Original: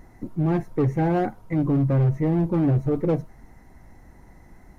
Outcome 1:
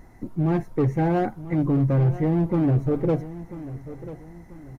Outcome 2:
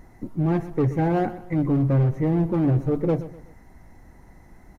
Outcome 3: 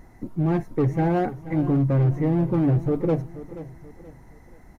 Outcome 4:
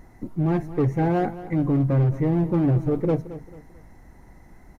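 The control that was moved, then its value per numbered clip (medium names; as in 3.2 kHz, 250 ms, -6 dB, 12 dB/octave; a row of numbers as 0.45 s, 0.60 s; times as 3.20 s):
feedback delay, time: 990 ms, 125 ms, 480 ms, 221 ms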